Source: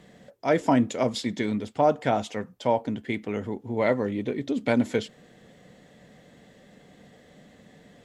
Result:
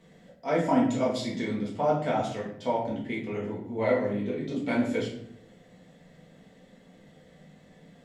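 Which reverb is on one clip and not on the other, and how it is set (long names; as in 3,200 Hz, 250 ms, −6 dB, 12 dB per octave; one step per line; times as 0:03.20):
rectangular room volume 130 cubic metres, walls mixed, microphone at 1.6 metres
level −9.5 dB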